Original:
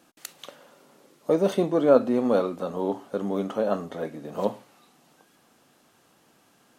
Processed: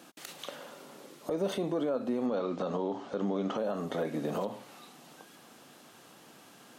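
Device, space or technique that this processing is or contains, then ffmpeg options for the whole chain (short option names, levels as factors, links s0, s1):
broadcast voice chain: -filter_complex "[0:a]asettb=1/sr,asplit=3[s0][s1][s2];[s0]atrim=end=2.264[s3];[s1]atrim=start=2.26:end=3.58,asetpts=PTS-STARTPTS,afade=t=in:d=0.004:c=qsin,afade=t=out:st=1.316:d=0.004:c=qsin,lowpass=f=6500:w=0.5412,lowpass=f=6500:w=1.3066[s4];[s2]atrim=start=3.576[s5];[s3][s4]acrossfade=d=0.004:c1=hsin:c2=qsin[s6];[s6][s5]acrossfade=d=0.004:c1=qsin:c2=hsin,highpass=110,deesser=0.75,acompressor=threshold=0.0282:ratio=4,equalizer=f=3500:t=o:w=0.77:g=2,alimiter=level_in=1.78:limit=0.0631:level=0:latency=1:release=58,volume=0.562,volume=2"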